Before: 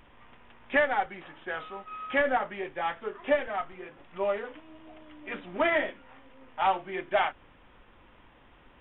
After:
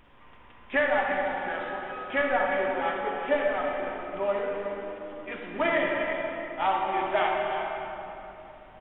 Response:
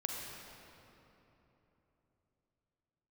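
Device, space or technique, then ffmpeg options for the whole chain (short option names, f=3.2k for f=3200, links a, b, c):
cave: -filter_complex "[0:a]aecho=1:1:351:0.355[a];[1:a]atrim=start_sample=2205[b];[a][b]afir=irnorm=-1:irlink=0"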